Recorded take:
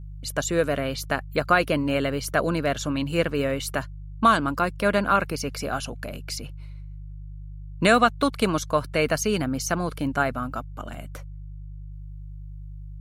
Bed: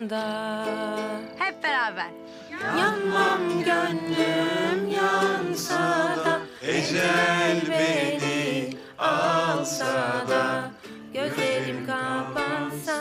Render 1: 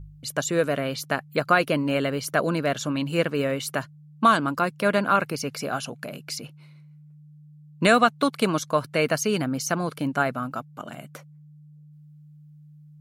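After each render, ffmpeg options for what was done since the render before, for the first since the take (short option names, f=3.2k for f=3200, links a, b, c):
-af "bandreject=f=50:t=h:w=4,bandreject=f=100:t=h:w=4"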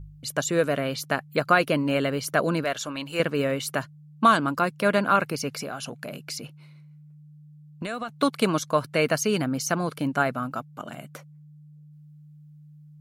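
-filter_complex "[0:a]asettb=1/sr,asplit=3[a][b][c];[a]atrim=end=2.644[d];[b]atrim=start=2.64:end=3.2,asetpts=PTS-STARTPTS,afade=t=in:d=0.004:c=qsin,afade=t=out:st=0.556:d=0.004:c=qsin,equalizer=f=170:w=0.6:g=-12[e];[c]atrim=start=3.196[f];[d][e]acrossfade=d=0.004:c1=hsin:c2=qsin[g];[g][f]acrossfade=d=0.004:c1=qsin:c2=hsin,asettb=1/sr,asplit=3[h][i][j];[h]atrim=end=5.624[k];[i]atrim=start=5.62:end=8.09,asetpts=PTS-STARTPTS,afade=t=in:d=0.004:c=qsin,afade=t=out:st=2.466:d=0.004:c=qsin,acompressor=threshold=-29dB:ratio=6:attack=3.2:release=140:knee=1:detection=peak[l];[j]atrim=start=8.086[m];[k][l]acrossfade=d=0.004:c1=hsin:c2=qsin[n];[n][m]acrossfade=d=0.004:c1=qsin:c2=hsin"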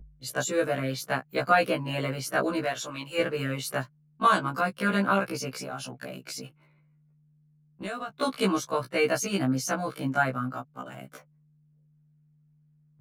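-filter_complex "[0:a]acrossover=split=140|970|2500[a][b][c][d];[d]aeval=exprs='sgn(val(0))*max(abs(val(0))-0.00112,0)':c=same[e];[a][b][c][e]amix=inputs=4:normalize=0,afftfilt=real='re*1.73*eq(mod(b,3),0)':imag='im*1.73*eq(mod(b,3),0)':win_size=2048:overlap=0.75"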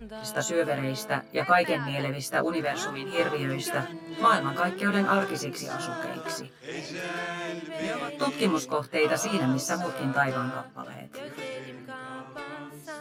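-filter_complex "[1:a]volume=-12dB[a];[0:a][a]amix=inputs=2:normalize=0"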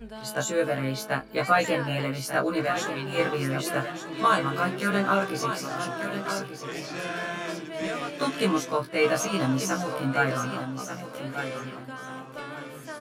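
-filter_complex "[0:a]asplit=2[a][b];[b]adelay=22,volume=-11dB[c];[a][c]amix=inputs=2:normalize=0,aecho=1:1:1189|2378|3567:0.355|0.0852|0.0204"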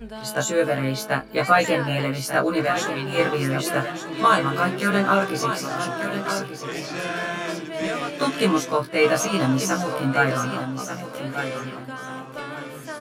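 -af "volume=4.5dB"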